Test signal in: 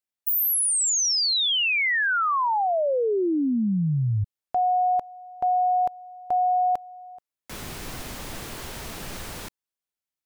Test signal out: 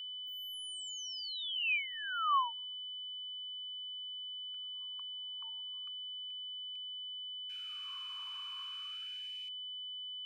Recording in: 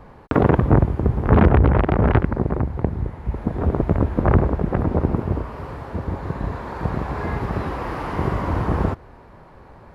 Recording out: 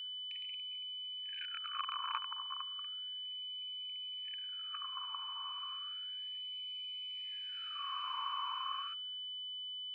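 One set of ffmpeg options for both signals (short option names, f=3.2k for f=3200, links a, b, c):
-filter_complex "[0:a]asplit=3[a][b][c];[a]bandpass=f=730:t=q:w=8,volume=0dB[d];[b]bandpass=f=1.09k:t=q:w=8,volume=-6dB[e];[c]bandpass=f=2.44k:t=q:w=8,volume=-9dB[f];[d][e][f]amix=inputs=3:normalize=0,aeval=exprs='val(0)+0.00794*sin(2*PI*3000*n/s)':c=same,afftfilt=real='re*gte(b*sr/1024,870*pow(2100/870,0.5+0.5*sin(2*PI*0.33*pts/sr)))':imag='im*gte(b*sr/1024,870*pow(2100/870,0.5+0.5*sin(2*PI*0.33*pts/sr)))':win_size=1024:overlap=0.75,volume=1dB"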